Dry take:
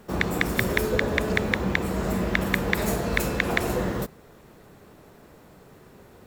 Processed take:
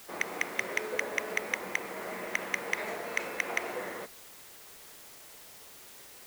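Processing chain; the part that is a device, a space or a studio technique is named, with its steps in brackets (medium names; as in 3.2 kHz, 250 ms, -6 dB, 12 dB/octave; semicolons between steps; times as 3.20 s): drive-through speaker (band-pass 480–3300 Hz; peaking EQ 2.1 kHz +9.5 dB 0.33 oct; hard clipper -10.5 dBFS, distortion -7 dB; white noise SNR 14 dB); trim -7 dB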